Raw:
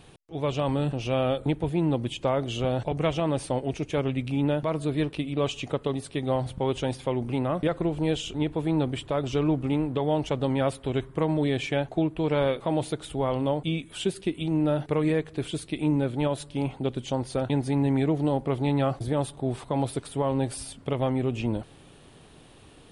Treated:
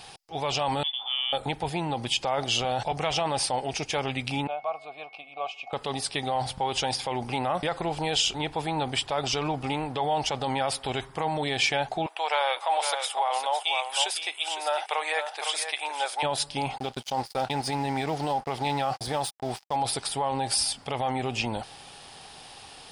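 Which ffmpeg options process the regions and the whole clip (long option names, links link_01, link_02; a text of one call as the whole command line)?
ffmpeg -i in.wav -filter_complex "[0:a]asettb=1/sr,asplit=3[link_01][link_02][link_03];[link_01]atrim=end=0.834[link_04];[link_02]atrim=start=0.83:end=1.33,asetpts=PTS-STARTPTS,afade=type=in:duration=0.004:curve=qsin,afade=type=out:start_time=0.496:duration=0.004:curve=qsin,acompressor=threshold=-29dB:ratio=4:attack=3.2:release=140:knee=1:detection=peak,agate=range=-33dB:threshold=-26dB:ratio=3:release=100:detection=peak,lowpass=frequency=3100:width_type=q:width=0.5098,lowpass=frequency=3100:width_type=q:width=0.6013,lowpass=frequency=3100:width_type=q:width=0.9,lowpass=frequency=3100:width_type=q:width=2.563,afreqshift=-3600[link_05];[link_03]atrim=start=1.326[link_06];[link_04][link_05]acrossfade=duration=0.004:curve1=hsin:curve2=qsin[link_07];[link_07][link_06]acrossfade=duration=0.004:curve1=qsin:curve2=hsin,asettb=1/sr,asplit=3[link_08][link_09][link_10];[link_08]atrim=end=4.474[link_11];[link_09]atrim=start=4.47:end=5.73,asetpts=PTS-STARTPTS,afade=type=in:duration=0.004:curve=qsin,afade=type=out:start_time=1.256:duration=0.004:curve=qsin,asplit=3[link_12][link_13][link_14];[link_12]bandpass=frequency=730:width_type=q:width=8,volume=0dB[link_15];[link_13]bandpass=frequency=1090:width_type=q:width=8,volume=-6dB[link_16];[link_14]bandpass=frequency=2440:width_type=q:width=8,volume=-9dB[link_17];[link_15][link_16][link_17]amix=inputs=3:normalize=0,equalizer=frequency=340:width_type=o:width=0.41:gain=-3,aeval=exprs='val(0)+0.001*sin(2*PI*2200*n/s)':channel_layout=same[link_18];[link_10]atrim=start=5.726[link_19];[link_11][link_18]acrossfade=duration=0.004:curve1=hsin:curve2=qsin[link_20];[link_20][link_19]acrossfade=duration=0.004:curve1=qsin:curve2=hsin,asettb=1/sr,asplit=3[link_21][link_22][link_23];[link_21]atrim=end=12.064[link_24];[link_22]atrim=start=12.06:end=16.23,asetpts=PTS-STARTPTS,afade=type=in:duration=0.004:curve=qsin,afade=type=out:start_time=4.166:duration=0.004:curve=qsin,highpass=frequency=610:width=0.5412,highpass=frequency=610:width=1.3066,equalizer=frequency=4400:width=5.8:gain=-6.5,aecho=1:1:507:0.376,atrim=end_sample=183897[link_25];[link_23]atrim=start=16.226[link_26];[link_24][link_25]acrossfade=duration=0.004:curve1=hsin:curve2=qsin[link_27];[link_27][link_26]acrossfade=duration=0.004:curve1=qsin:curve2=hsin,asettb=1/sr,asplit=3[link_28][link_29][link_30];[link_28]atrim=end=16.784[link_31];[link_29]atrim=start=16.78:end=19.76,asetpts=PTS-STARTPTS,afade=type=in:duration=0.004:curve=qsin,afade=type=out:start_time=2.976:duration=0.004:curve=qsin,agate=range=-33dB:threshold=-34dB:ratio=3:release=100:detection=peak,equalizer=frequency=100:width_type=o:width=0.23:gain=-8,aeval=exprs='sgn(val(0))*max(abs(val(0))-0.00422,0)':channel_layout=same[link_32];[link_30]atrim=start=19.756[link_33];[link_31][link_32]acrossfade=duration=0.004:curve1=hsin:curve2=qsin[link_34];[link_34][link_33]acrossfade=duration=0.004:curve1=qsin:curve2=hsin,equalizer=frequency=315:width_type=o:width=0.33:gain=-5,equalizer=frequency=800:width_type=o:width=0.33:gain=12,equalizer=frequency=5000:width_type=o:width=0.33:gain=11,alimiter=limit=-20.5dB:level=0:latency=1:release=23,tiltshelf=frequency=710:gain=-7.5,volume=2.5dB" out.wav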